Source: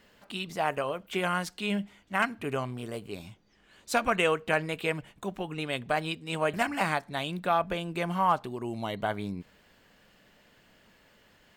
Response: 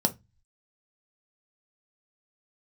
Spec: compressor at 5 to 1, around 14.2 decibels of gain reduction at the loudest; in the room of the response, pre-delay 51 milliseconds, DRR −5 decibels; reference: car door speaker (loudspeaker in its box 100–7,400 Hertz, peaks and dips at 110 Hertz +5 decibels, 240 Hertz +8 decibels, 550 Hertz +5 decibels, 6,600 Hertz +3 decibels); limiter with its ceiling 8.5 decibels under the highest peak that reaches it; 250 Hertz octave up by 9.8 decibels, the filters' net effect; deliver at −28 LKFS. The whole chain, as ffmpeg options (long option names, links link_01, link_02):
-filter_complex "[0:a]equalizer=frequency=250:width_type=o:gain=8,acompressor=threshold=-36dB:ratio=5,alimiter=level_in=6.5dB:limit=-24dB:level=0:latency=1,volume=-6.5dB,asplit=2[link_01][link_02];[1:a]atrim=start_sample=2205,adelay=51[link_03];[link_02][link_03]afir=irnorm=-1:irlink=0,volume=-4dB[link_04];[link_01][link_04]amix=inputs=2:normalize=0,highpass=100,equalizer=frequency=110:width_type=q:width=4:gain=5,equalizer=frequency=240:width_type=q:width=4:gain=8,equalizer=frequency=550:width_type=q:width=4:gain=5,equalizer=frequency=6600:width_type=q:width=4:gain=3,lowpass=frequency=7400:width=0.5412,lowpass=frequency=7400:width=1.3066,volume=-2.5dB"